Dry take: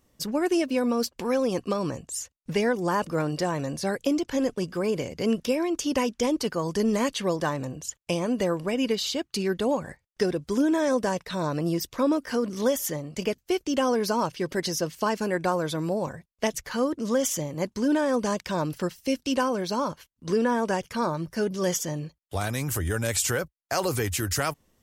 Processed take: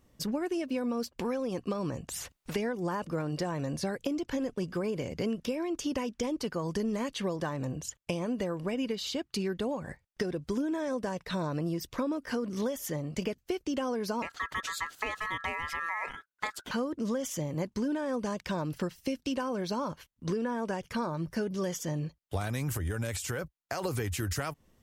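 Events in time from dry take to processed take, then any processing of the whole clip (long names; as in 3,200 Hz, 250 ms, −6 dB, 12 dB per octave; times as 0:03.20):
0:02.08–0:02.56: every bin compressed towards the loudest bin 2 to 1
0:14.22–0:16.71: ring modulation 1,500 Hz
0:22.77–0:23.85: downward compressor 3 to 1, threshold −29 dBFS
whole clip: downward compressor, threshold −30 dBFS; bass and treble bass +3 dB, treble −4 dB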